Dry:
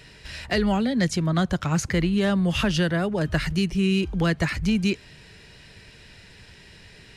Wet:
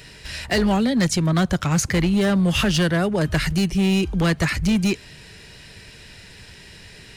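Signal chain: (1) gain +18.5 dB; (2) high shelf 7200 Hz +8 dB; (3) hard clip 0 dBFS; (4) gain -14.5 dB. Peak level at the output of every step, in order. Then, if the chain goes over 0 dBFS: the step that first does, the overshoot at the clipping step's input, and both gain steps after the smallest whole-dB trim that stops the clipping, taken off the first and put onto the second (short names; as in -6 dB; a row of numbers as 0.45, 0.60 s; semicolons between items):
+7.0, +7.0, 0.0, -14.5 dBFS; step 1, 7.0 dB; step 1 +11.5 dB, step 4 -7.5 dB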